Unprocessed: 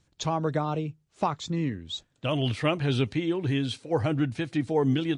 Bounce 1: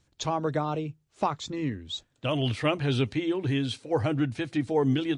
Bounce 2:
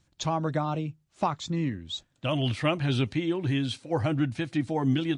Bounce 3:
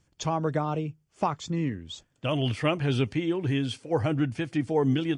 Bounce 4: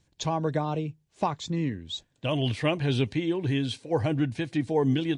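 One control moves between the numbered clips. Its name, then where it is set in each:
band-stop, frequency: 170 Hz, 440 Hz, 3.9 kHz, 1.3 kHz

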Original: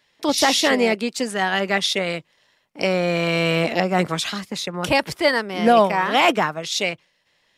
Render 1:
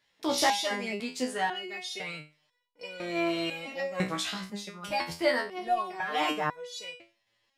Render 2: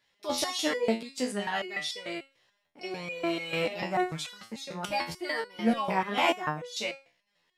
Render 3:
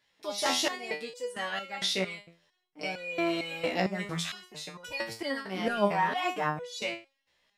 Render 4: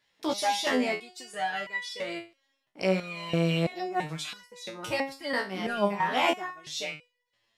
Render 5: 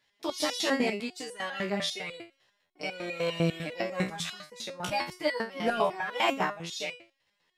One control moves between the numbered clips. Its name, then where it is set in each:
resonator arpeggio, rate: 2 Hz, 6.8 Hz, 4.4 Hz, 3 Hz, 10 Hz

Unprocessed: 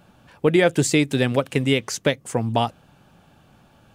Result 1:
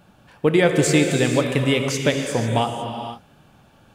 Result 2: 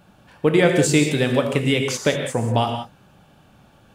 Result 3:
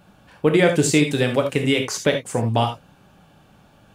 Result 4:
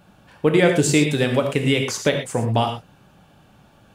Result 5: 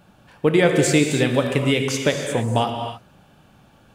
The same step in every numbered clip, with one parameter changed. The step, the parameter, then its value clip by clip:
gated-style reverb, gate: 530 ms, 210 ms, 100 ms, 140 ms, 330 ms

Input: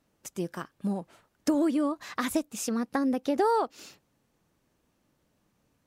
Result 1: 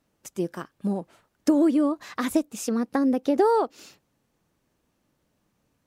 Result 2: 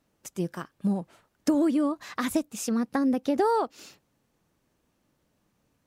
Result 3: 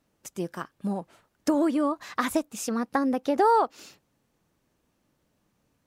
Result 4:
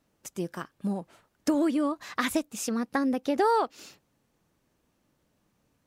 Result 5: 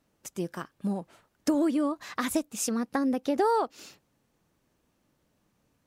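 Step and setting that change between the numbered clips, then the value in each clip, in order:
dynamic bell, frequency: 370 Hz, 130 Hz, 990 Hz, 2.5 kHz, 9.1 kHz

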